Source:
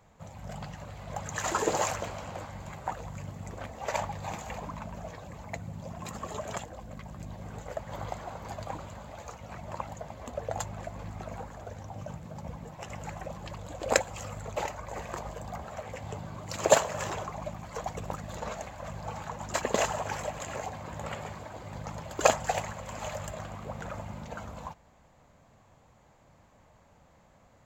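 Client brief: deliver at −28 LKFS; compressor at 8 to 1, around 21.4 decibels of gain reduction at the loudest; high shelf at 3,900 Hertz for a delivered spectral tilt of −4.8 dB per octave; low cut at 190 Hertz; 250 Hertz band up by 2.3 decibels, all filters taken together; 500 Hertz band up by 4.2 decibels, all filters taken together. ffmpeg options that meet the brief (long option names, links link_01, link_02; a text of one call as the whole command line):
ffmpeg -i in.wav -af "highpass=190,equalizer=frequency=250:width_type=o:gain=4.5,equalizer=frequency=500:width_type=o:gain=4.5,highshelf=frequency=3900:gain=-3,acompressor=threshold=-36dB:ratio=8,volume=14dB" out.wav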